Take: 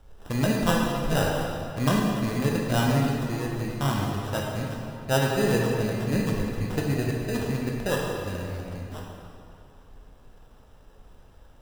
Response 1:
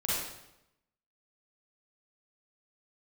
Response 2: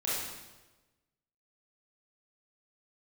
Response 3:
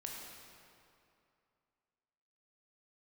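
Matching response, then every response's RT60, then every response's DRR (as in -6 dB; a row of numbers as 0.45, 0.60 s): 3; 0.85, 1.2, 2.6 s; -8.0, -8.5, -1.5 dB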